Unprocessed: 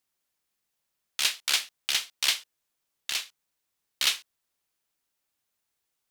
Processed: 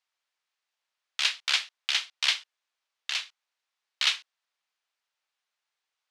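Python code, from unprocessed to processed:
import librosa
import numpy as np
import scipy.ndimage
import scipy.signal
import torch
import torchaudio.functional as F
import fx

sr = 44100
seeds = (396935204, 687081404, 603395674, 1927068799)

y = fx.bandpass_edges(x, sr, low_hz=780.0, high_hz=4600.0)
y = y * librosa.db_to_amplitude(2.0)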